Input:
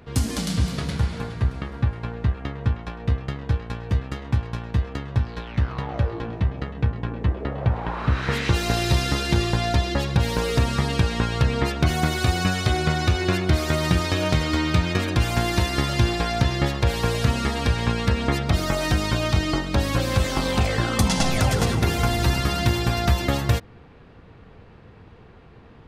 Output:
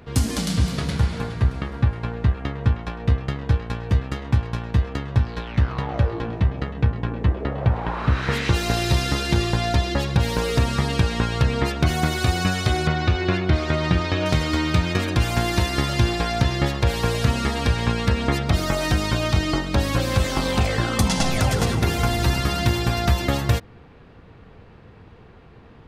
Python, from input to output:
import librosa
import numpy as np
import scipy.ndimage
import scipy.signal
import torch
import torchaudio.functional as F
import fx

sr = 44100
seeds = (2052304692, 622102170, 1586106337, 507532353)

p1 = fx.lowpass(x, sr, hz=4000.0, slope=12, at=(12.87, 14.26))
p2 = fx.rider(p1, sr, range_db=10, speed_s=0.5)
p3 = p1 + (p2 * librosa.db_to_amplitude(-2.0))
y = p3 * librosa.db_to_amplitude(-4.0)